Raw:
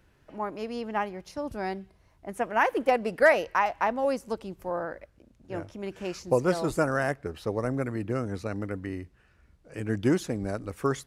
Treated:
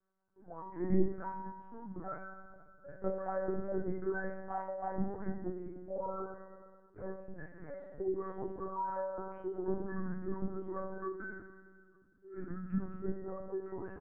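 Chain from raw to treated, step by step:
noise reduction from a noise print of the clip's start 14 dB
Chebyshev band-pass filter 110–2,000 Hz, order 4
reverb reduction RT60 1.7 s
downward compressor 6 to 1, threshold −30 dBFS, peak gain reduction 14.5 dB
brickwall limiter −28.5 dBFS, peak gain reduction 9 dB
speed change −21%
tuned comb filter 190 Hz, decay 0.38 s, harmonics all, mix 100%
repeating echo 453 ms, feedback 25%, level −22 dB
convolution reverb RT60 1.9 s, pre-delay 3 ms, DRR 4.5 dB
linear-prediction vocoder at 8 kHz pitch kept
level +13 dB

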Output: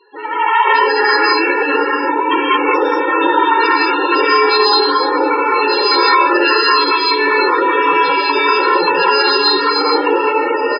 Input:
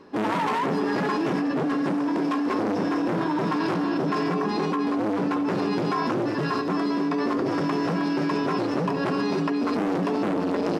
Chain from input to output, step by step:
high-shelf EQ 3,100 Hz −5 dB
comb filter 2.2 ms, depth 82%
automatic gain control gain up to 11.5 dB
resonant band-pass 3,300 Hz, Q 1.4
spectral peaks only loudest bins 16
slap from a distant wall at 86 metres, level −22 dB
reverb whose tail is shaped and stops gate 240 ms rising, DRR −4 dB
boost into a limiter +15.5 dB
level −1 dB

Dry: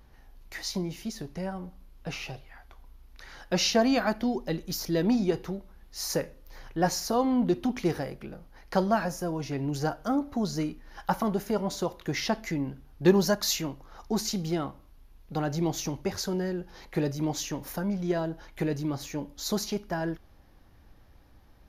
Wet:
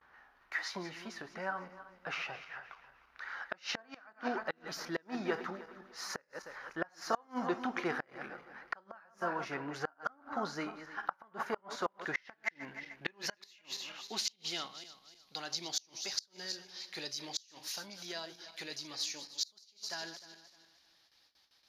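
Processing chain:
feedback delay that plays each chunk backwards 153 ms, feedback 54%, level −12 dB
noise gate with hold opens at −47 dBFS
band-pass filter sweep 1,400 Hz → 4,500 Hz, 0:11.84–0:15.36
gate with flip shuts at −30 dBFS, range −32 dB
level +9.5 dB

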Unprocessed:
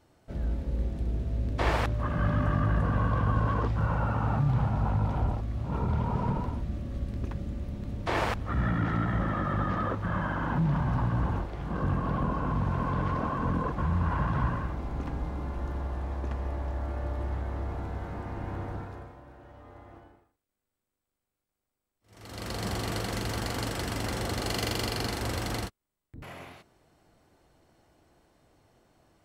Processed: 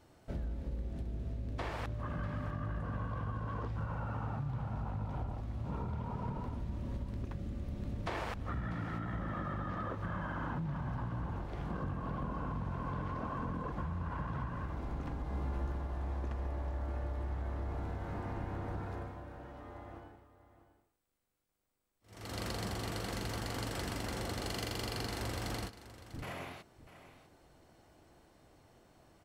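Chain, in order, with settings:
downward compressor 10 to 1, threshold −36 dBFS, peak gain reduction 15.5 dB
0:15.24–0:15.72: double-tracking delay 15 ms −5.5 dB
single-tap delay 646 ms −14.5 dB
level +1 dB

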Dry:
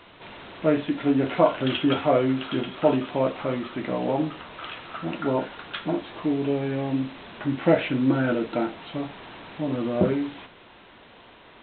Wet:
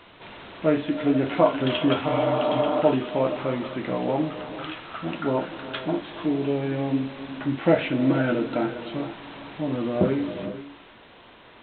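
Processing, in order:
reverb whose tail is shaped and stops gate 500 ms rising, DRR 10.5 dB
healed spectral selection 0:02.11–0:02.79, 230–1,800 Hz before

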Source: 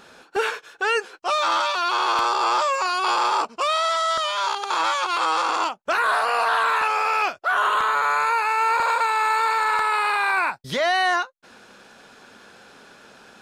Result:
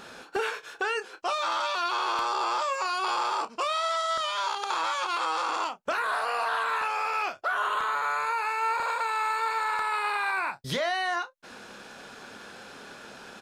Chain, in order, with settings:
downward compressor 3 to 1, threshold −32 dBFS, peak gain reduction 11.5 dB
double-tracking delay 29 ms −11.5 dB
level +2.5 dB

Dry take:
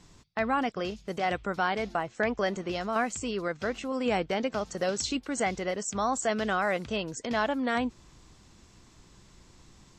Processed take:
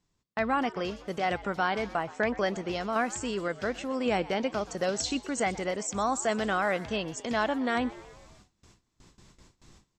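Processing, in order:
echo with shifted repeats 123 ms, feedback 55%, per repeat +98 Hz, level −18.5 dB
noise gate with hold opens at −44 dBFS

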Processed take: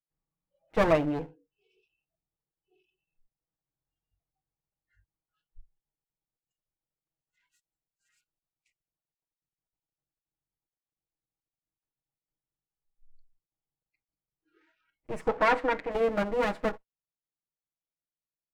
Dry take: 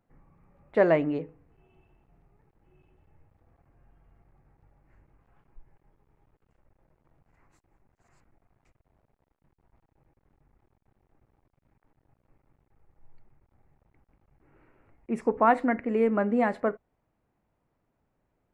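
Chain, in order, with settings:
lower of the sound and its delayed copy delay 6.3 ms
noise reduction from a noise print of the clip's start 30 dB
0:15.28–0:15.92: mid-hump overdrive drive 9 dB, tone 2,400 Hz, clips at −12 dBFS

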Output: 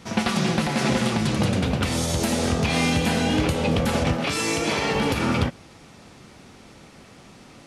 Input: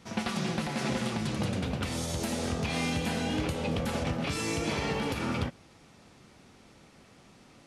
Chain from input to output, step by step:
0:04.16–0:04.95: low-shelf EQ 170 Hz −11 dB
level +9 dB

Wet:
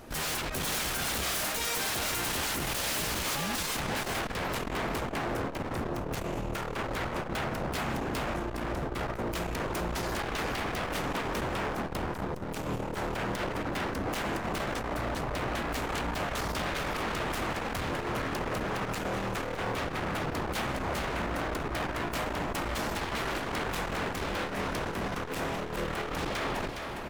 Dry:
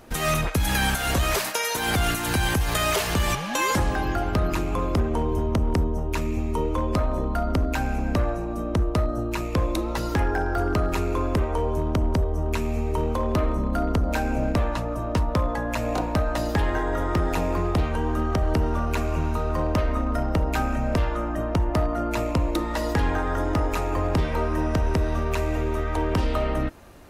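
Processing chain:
wave folding −27.5 dBFS
single-tap delay 413 ms −5.5 dB
saturating transformer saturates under 92 Hz

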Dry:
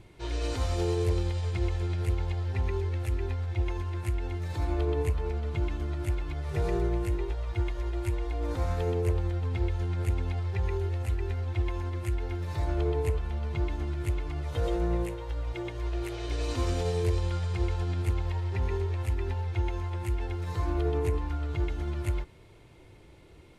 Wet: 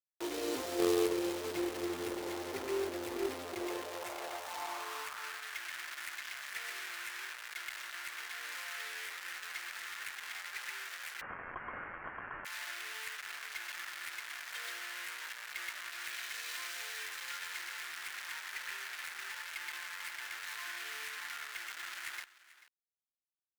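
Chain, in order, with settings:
brickwall limiter −22.5 dBFS, peak gain reduction 3.5 dB
bit reduction 6 bits
on a send: single-tap delay 439 ms −18 dB
on the sum: high-pass filter sweep 340 Hz → 1,700 Hz, 0:03.44–0:05.53
harmonic generator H 2 −27 dB, 3 −11 dB, 5 −23 dB, 7 −42 dB, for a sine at −17 dBFS
0:11.21–0:12.45: voice inversion scrambler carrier 3,200 Hz
level +1.5 dB

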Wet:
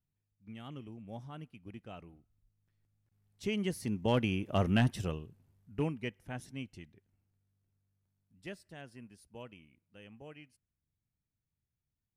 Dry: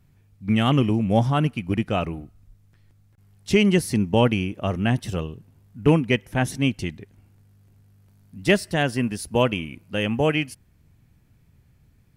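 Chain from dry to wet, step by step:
source passing by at 0:04.67, 7 m/s, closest 2 metres
hard clipping −16 dBFS, distortion −20 dB
level −4 dB

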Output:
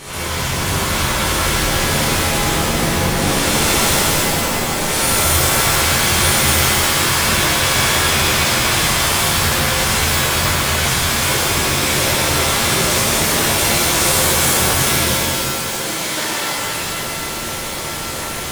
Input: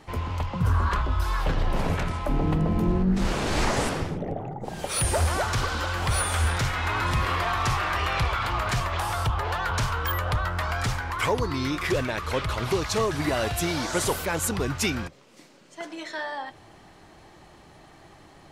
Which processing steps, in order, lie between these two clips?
compressor on every frequency bin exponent 0.4
high-shelf EQ 2,100 Hz +11.5 dB
reverb with rising layers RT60 2.3 s, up +7 semitones, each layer −2 dB, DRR −11 dB
level −15 dB

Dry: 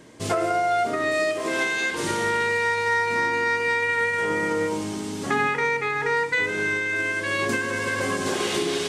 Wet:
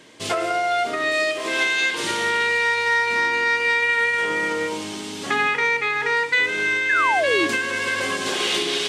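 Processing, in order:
parametric band 3,200 Hz +8.5 dB 1.4 octaves
sound drawn into the spectrogram fall, 0:06.89–0:07.47, 290–1,800 Hz −20 dBFS
low-shelf EQ 180 Hz −10.5 dB

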